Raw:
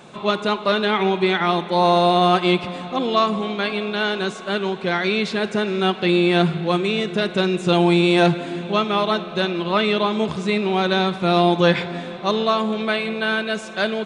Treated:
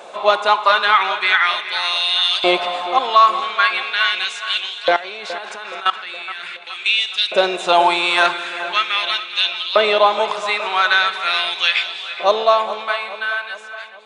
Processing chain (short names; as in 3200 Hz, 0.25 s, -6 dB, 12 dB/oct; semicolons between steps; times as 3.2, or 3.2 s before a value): ending faded out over 2.25 s; LFO high-pass saw up 0.41 Hz 560–3700 Hz; 4.92–6.86 level quantiser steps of 18 dB; on a send: split-band echo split 2900 Hz, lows 0.42 s, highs 0.209 s, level -13.5 dB; on the sum: maximiser +5.5 dB; gain -1 dB